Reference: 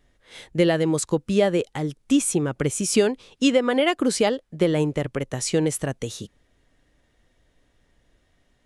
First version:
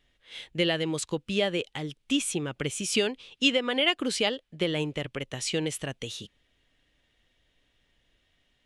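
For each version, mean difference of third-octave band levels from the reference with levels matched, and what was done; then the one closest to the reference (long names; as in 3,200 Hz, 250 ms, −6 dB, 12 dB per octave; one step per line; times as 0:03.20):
2.5 dB: parametric band 3,000 Hz +13 dB 1.2 octaves
level −8.5 dB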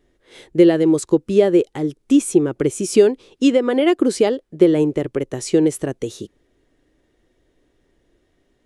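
5.0 dB: parametric band 360 Hz +13 dB 0.83 octaves
level −2 dB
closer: first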